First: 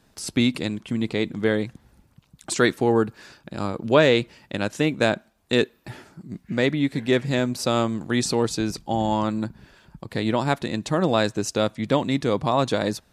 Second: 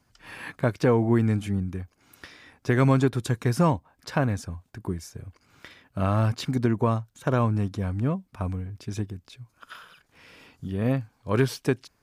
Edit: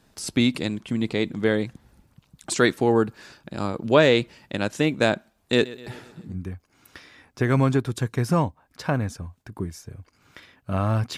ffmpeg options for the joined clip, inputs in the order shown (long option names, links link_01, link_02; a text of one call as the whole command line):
ffmpeg -i cue0.wav -i cue1.wav -filter_complex "[0:a]asettb=1/sr,asplit=3[link_01][link_02][link_03];[link_01]atrim=end=5.344[link_04];[link_02]atrim=start=5.34:end=6.37,asetpts=PTS-STARTPTS,afade=type=in:duration=0.004:curve=qsin,afade=type=out:start_time=1.026:duration=0.004:curve=qsin,aecho=1:1:126|252|378|504|630:0.119|0.0677|0.0386|0.022|0.0125,atrim=end_sample=45423[link_05];[link_03]atrim=start=6.366[link_06];[link_04][link_05]acrossfade=duration=0.004:curve1=hsin:curve2=qsin[link_07];[link_07][link_06]acrossfade=duration=0.004:curve1=qsin:curve2=hsin,apad=whole_dur=11.17,atrim=end=11.17,atrim=end=6.37,asetpts=PTS-STARTPTS[link_08];[1:a]atrim=start=1.55:end=6.45,asetpts=PTS-STARTPTS[link_09];[link_08][link_09]acrossfade=duration=0.1:curve1=tri:curve2=tri" out.wav